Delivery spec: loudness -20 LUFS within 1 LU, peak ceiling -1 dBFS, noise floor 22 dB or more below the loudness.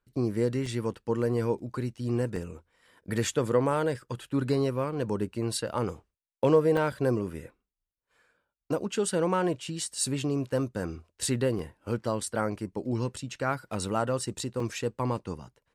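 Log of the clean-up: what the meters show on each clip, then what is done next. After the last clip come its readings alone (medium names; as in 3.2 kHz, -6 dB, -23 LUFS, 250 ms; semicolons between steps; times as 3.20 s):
dropouts 5; longest dropout 2.9 ms; loudness -30.0 LUFS; peak level -11.5 dBFS; loudness target -20.0 LUFS
-> interpolate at 0.66/2.36/6.77/11.59/14.60 s, 2.9 ms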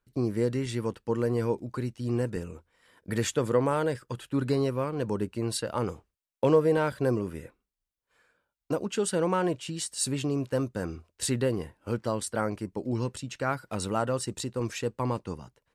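dropouts 0; loudness -30.0 LUFS; peak level -11.5 dBFS; loudness target -20.0 LUFS
-> trim +10 dB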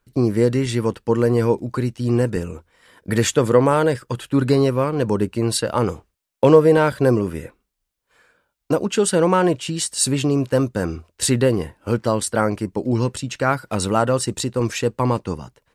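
loudness -20.0 LUFS; peak level -1.5 dBFS; noise floor -78 dBFS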